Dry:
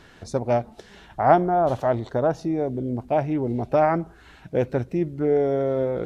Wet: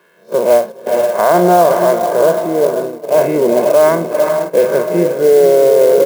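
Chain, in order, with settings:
spectrum smeared in time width 88 ms
low-pass filter 2,800 Hz 12 dB per octave
comb filter 1.9 ms, depth 86%
feedback delay with all-pass diffusion 460 ms, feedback 41%, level −6.5 dB
sample-and-hold tremolo 3.5 Hz, depth 55%
Butterworth high-pass 180 Hz 48 dB per octave
noise gate −35 dBFS, range −11 dB
boost into a limiter +17 dB
converter with an unsteady clock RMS 0.026 ms
level −1 dB

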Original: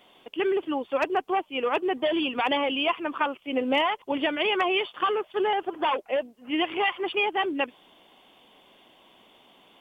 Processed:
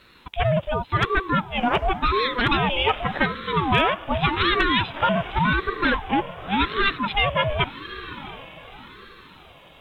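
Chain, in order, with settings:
feedback delay with all-pass diffusion 715 ms, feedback 42%, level −14 dB
ring modulator whose carrier an LFO sweeps 510 Hz, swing 55%, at 0.88 Hz
level +7 dB

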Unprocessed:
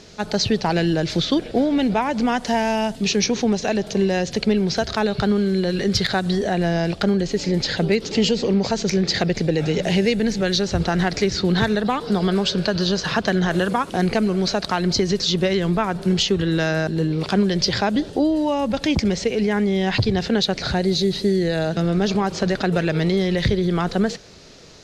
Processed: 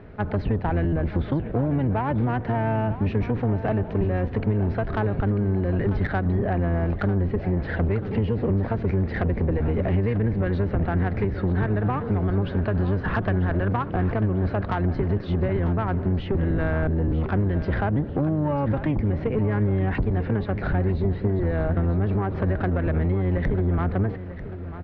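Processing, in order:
sub-octave generator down 1 octave, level +4 dB
low-pass filter 1,900 Hz 24 dB per octave
downward compressor, threshold −18 dBFS, peak gain reduction 8.5 dB
soft clipping −15.5 dBFS, distortion −19 dB
repeating echo 943 ms, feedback 40%, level −13 dB

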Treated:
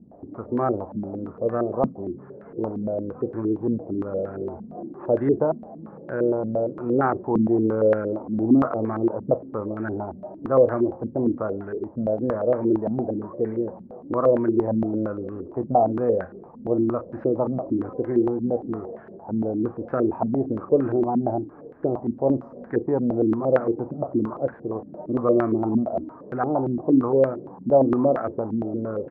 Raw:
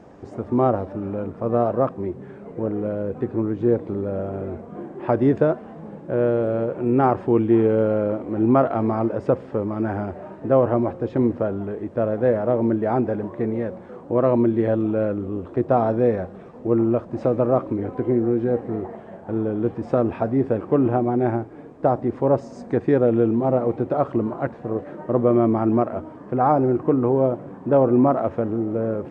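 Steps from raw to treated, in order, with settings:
double-tracking delay 37 ms −13 dB
low-pass on a step sequencer 8.7 Hz 220–1,600 Hz
level −7 dB

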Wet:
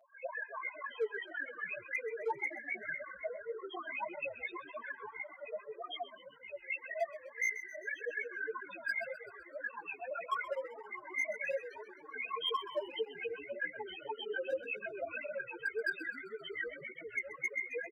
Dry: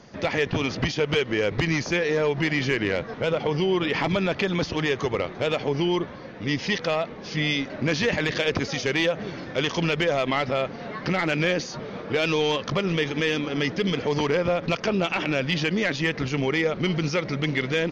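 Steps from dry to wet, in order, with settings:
lower of the sound and its delayed copy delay 1.9 ms
high-pass filter 120 Hz 24 dB per octave
gate on every frequency bin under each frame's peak −20 dB strong
low-pass filter 4,600 Hz 12 dB per octave
high-shelf EQ 2,200 Hz +3.5 dB
notch comb filter 250 Hz
auto-filter band-pass saw up 4 Hz 710–2,700 Hz
0:04.11–0:06.63: square-wave tremolo 9.5 Hz, depth 60%, duty 65%
spectral peaks only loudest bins 1
hard clipping −37 dBFS, distortion −18 dB
echo with shifted repeats 130 ms, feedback 61%, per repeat −56 Hz, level −13.5 dB
through-zero flanger with one copy inverted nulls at 1.8 Hz, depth 7.5 ms
level +10 dB

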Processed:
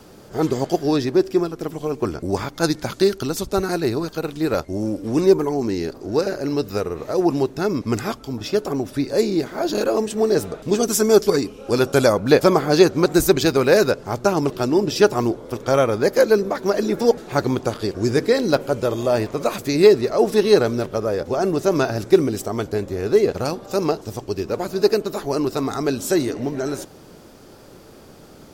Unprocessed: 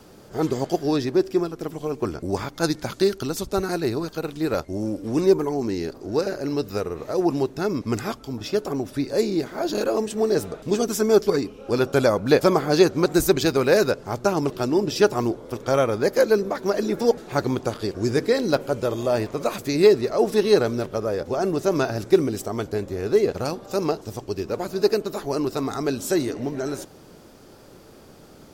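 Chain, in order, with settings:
0:10.83–0:12.13: parametric band 9,200 Hz +6.5 dB 1.6 octaves
level +3 dB

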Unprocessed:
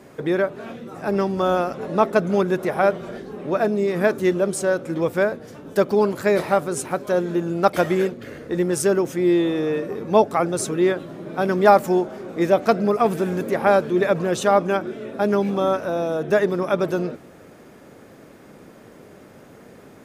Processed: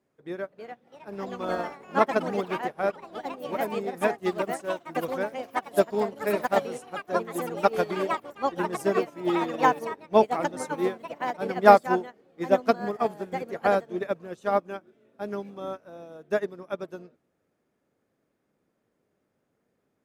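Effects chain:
delay with pitch and tempo change per echo 377 ms, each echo +4 semitones, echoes 3
expander for the loud parts 2.5 to 1, over −29 dBFS

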